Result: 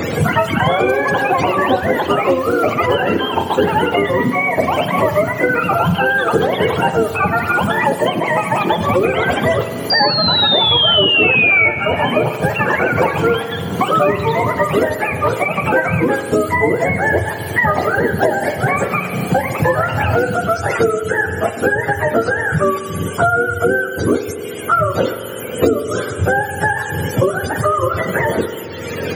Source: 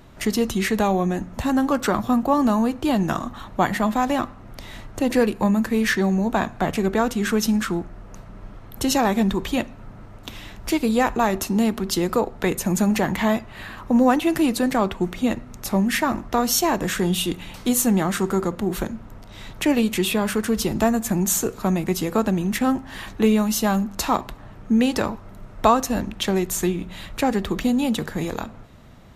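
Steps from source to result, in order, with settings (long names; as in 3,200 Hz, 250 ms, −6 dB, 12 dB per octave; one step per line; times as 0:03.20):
frequency axis turned over on the octave scale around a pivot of 550 Hz
octave-band graphic EQ 500/1,000/2,000 Hz +11/−6/+5 dB
delay with pitch and tempo change per echo 100 ms, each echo +6 semitones, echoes 2
sound drawn into the spectrogram fall, 0:09.90–0:11.69, 2,200–4,800 Hz −6 dBFS
spring reverb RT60 1.2 s, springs 44 ms, chirp 60 ms, DRR 10 dB
multiband upward and downward compressor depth 100%
level +1.5 dB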